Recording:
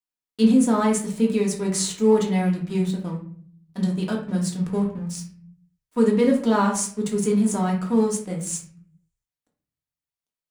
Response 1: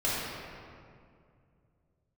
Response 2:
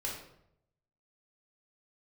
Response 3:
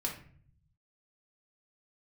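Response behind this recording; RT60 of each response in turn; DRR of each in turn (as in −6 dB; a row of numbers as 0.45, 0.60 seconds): 3; 2.3, 0.75, 0.50 seconds; −8.5, −3.5, −1.0 decibels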